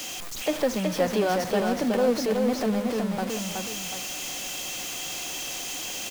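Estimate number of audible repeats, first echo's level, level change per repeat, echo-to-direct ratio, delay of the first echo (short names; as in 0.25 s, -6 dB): 2, -4.0 dB, -8.0 dB, -3.5 dB, 0.371 s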